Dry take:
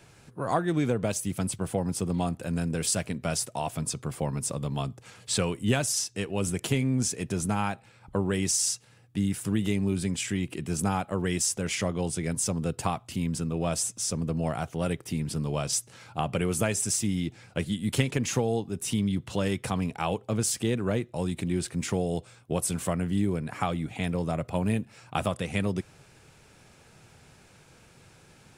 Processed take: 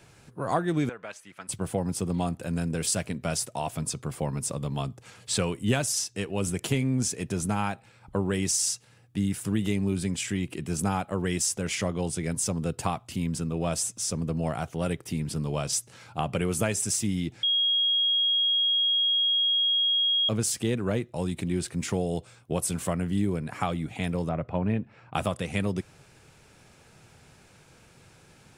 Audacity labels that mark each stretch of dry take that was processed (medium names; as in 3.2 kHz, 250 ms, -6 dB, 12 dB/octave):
0.890000	1.490000	band-pass filter 1.6 kHz, Q 1.5
17.430000	20.290000	bleep 3.28 kHz -21 dBFS
24.290000	25.140000	low-pass 2.2 kHz